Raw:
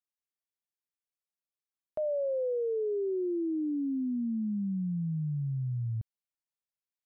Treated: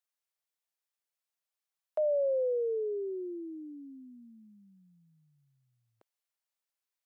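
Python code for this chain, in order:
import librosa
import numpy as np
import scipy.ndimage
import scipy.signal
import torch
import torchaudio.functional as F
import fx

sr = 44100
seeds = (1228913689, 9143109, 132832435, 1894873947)

y = scipy.signal.sosfilt(scipy.signal.butter(4, 480.0, 'highpass', fs=sr, output='sos'), x)
y = y * librosa.db_to_amplitude(3.5)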